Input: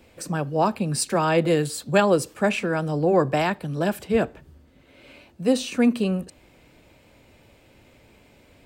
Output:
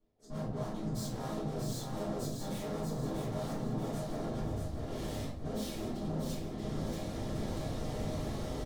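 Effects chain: harmoniser -3 st 0 dB, +5 st -3 dB, +7 st -5 dB; AGC gain up to 10 dB; limiter -10 dBFS, peak gain reduction 9 dB; reverse; compressor 12:1, threshold -34 dBFS, peak gain reduction 19.5 dB; reverse; LPF 5500 Hz 12 dB/oct; gate -44 dBFS, range -34 dB; tube stage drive 50 dB, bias 0.55; bell 2300 Hz -14 dB 1.4 oct; notch 1500 Hz, Q 21; on a send: feedback echo 0.636 s, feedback 45%, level -4.5 dB; on the sum: shoebox room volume 54 m³, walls mixed, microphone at 2.3 m; gain +1.5 dB

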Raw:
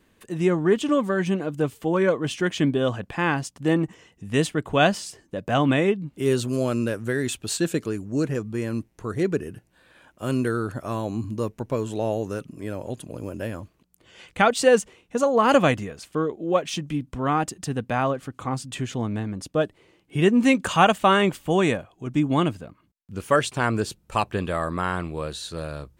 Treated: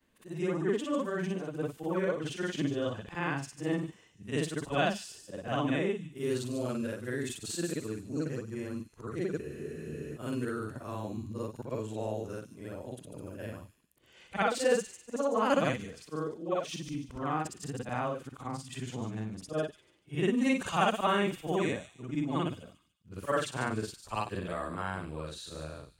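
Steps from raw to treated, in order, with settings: short-time reversal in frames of 0.129 s; thin delay 0.146 s, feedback 32%, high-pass 4300 Hz, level -6 dB; spectral freeze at 9.43, 0.74 s; gain -6.5 dB

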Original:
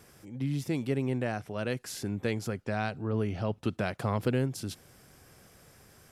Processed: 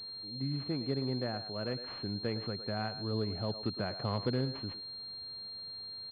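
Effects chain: speakerphone echo 0.11 s, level -10 dB; pulse-width modulation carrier 4200 Hz; gain -4.5 dB

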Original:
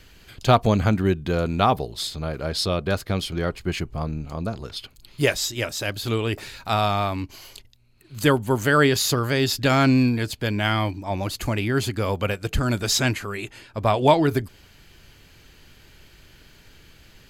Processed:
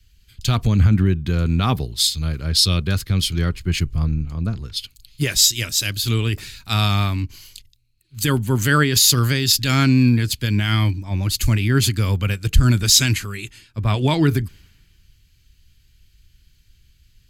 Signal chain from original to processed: passive tone stack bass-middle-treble 6-0-2; maximiser +31 dB; three-band expander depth 70%; gain -7.5 dB

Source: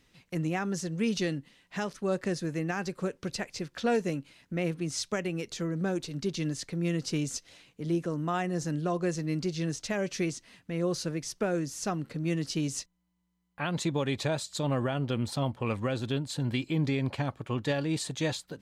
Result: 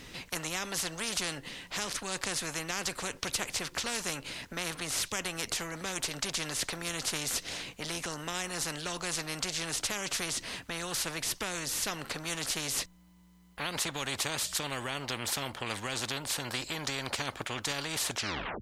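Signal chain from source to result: tape stop at the end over 0.53 s; spectral compressor 4:1; gain +5.5 dB

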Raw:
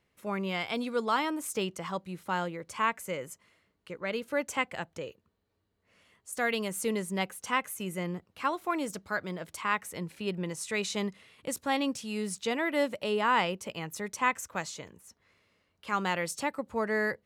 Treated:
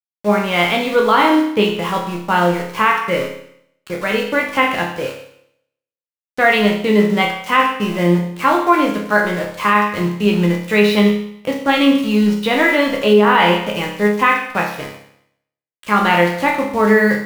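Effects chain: LPF 3900 Hz 24 dB/oct; sample gate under -43.5 dBFS; resonator bank C#2 major, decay 0.7 s; maximiser +34 dB; gain -1 dB

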